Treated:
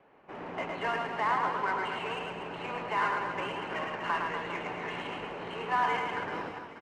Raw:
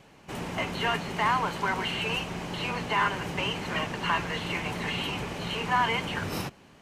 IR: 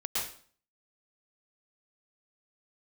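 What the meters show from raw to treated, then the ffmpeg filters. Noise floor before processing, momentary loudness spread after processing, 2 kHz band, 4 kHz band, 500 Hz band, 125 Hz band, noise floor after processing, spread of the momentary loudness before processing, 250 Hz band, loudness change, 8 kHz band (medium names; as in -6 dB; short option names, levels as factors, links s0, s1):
-55 dBFS, 10 LU, -4.0 dB, -10.5 dB, -1.5 dB, -12.0 dB, -48 dBFS, 8 LU, -7.5 dB, -3.5 dB, under -10 dB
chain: -filter_complex "[0:a]acrossover=split=280 2300:gain=0.178 1 0.178[s0][s1][s2];[s0][s1][s2]amix=inputs=3:normalize=0,adynamicsmooth=sensitivity=6.5:basefreq=3400,aecho=1:1:110|242|400.4|590.5|818.6:0.631|0.398|0.251|0.158|0.1,volume=0.708"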